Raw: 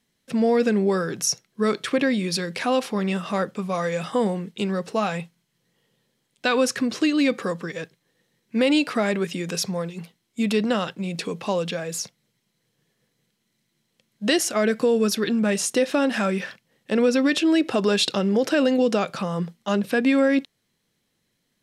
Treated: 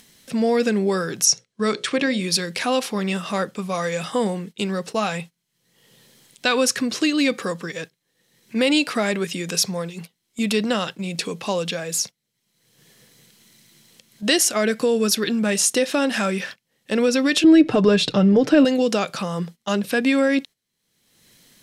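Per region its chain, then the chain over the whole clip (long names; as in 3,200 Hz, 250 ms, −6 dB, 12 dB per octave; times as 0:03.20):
0:01.25–0:02.21: low-pass filter 9,000 Hz 24 dB per octave + mains-hum notches 60/120/180/240/300/360/420/480/540 Hz
0:17.44–0:18.65: RIAA equalisation playback + comb filter 6.7 ms, depth 44%
whole clip: noise gate −37 dBFS, range −12 dB; high-shelf EQ 2,800 Hz +8 dB; upward compression, threshold −32 dBFS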